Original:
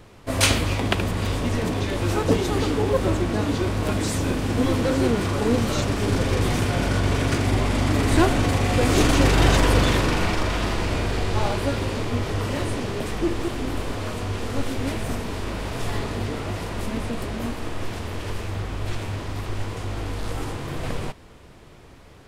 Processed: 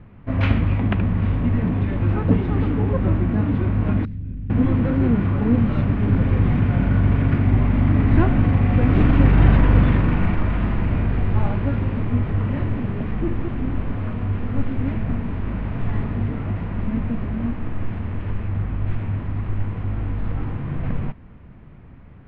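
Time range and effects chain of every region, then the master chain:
4.05–4.5 passive tone stack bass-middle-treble 10-0-1 + fast leveller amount 70%
whole clip: LPF 2400 Hz 24 dB/oct; resonant low shelf 290 Hz +8.5 dB, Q 1.5; gain -3.5 dB

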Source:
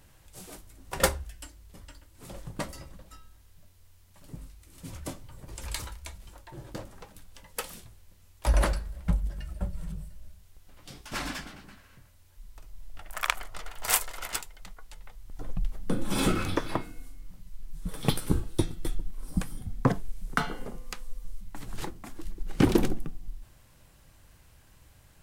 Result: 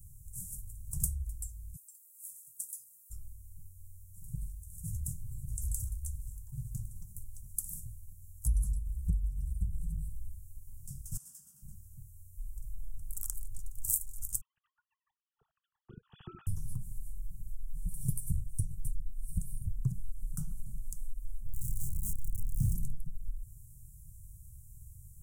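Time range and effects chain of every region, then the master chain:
1.76–3.1 HPF 240 Hz 6 dB/oct + differentiator
11.17–11.62 HPF 430 Hz + compressor 2.5:1, threshold -47 dBFS
14.41–16.47 sine-wave speech + bell 1800 Hz +6 dB 0.75 oct + notch 1000 Hz, Q 9.9
21.46–22.75 zero-crossing step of -26 dBFS + doubler 30 ms -2.5 dB
whole clip: inverse Chebyshev band-stop 280–4300 Hz, stop band 40 dB; compressor 2.5:1, threshold -39 dBFS; gain +7 dB

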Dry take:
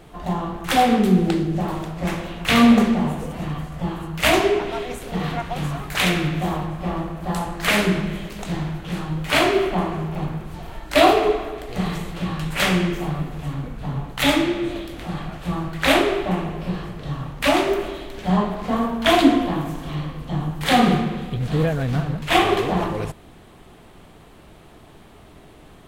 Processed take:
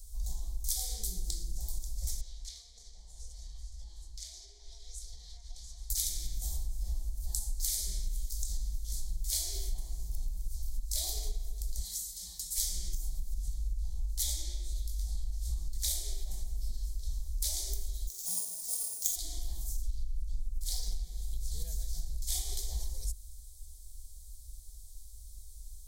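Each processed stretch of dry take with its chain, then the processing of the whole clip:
2.21–5.9 Chebyshev low-pass 4400 Hz + low shelf 390 Hz -10 dB + compressor 12:1, threshold -31 dBFS
11.83–12.57 HPF 180 Hz + bell 520 Hz -7 dB 2 oct + comb 3.9 ms
13.34–15.78 high shelf 7500 Hz -6 dB + doubler 19 ms -7 dB
18.07–19.16 HPF 170 Hz 24 dB/oct + sample-rate reducer 10000 Hz
19.81–21.03 low shelf 64 Hz +12 dB + Doppler distortion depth 0.51 ms
whole clip: dynamic EQ 2700 Hz, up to +4 dB, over -35 dBFS, Q 1; inverse Chebyshev band-stop 110–2900 Hz, stop band 40 dB; compressor 12:1, threshold -36 dBFS; gain +7.5 dB

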